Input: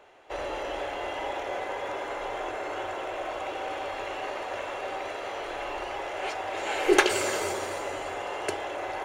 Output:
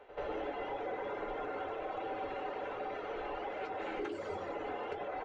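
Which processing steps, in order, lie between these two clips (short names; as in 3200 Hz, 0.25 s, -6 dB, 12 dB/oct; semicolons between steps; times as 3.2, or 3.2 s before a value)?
reverb removal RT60 1.6 s; high shelf 2600 Hz +7 dB; notches 50/100/150/200/250/300/350/400 Hz; comb 3.9 ms, depth 31%; compressor 8:1, threshold -32 dBFS, peak gain reduction 19 dB; small resonant body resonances 430/1400/3800 Hz, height 11 dB, ringing for 95 ms; time stretch by phase-locked vocoder 0.58×; flange 1.4 Hz, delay 9.7 ms, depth 4.4 ms, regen -60%; soft clip -33 dBFS, distortion -21 dB; tape spacing loss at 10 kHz 40 dB; reverse echo 85 ms -14 dB; on a send at -14 dB: reverb, pre-delay 76 ms; on the sum: gain +6 dB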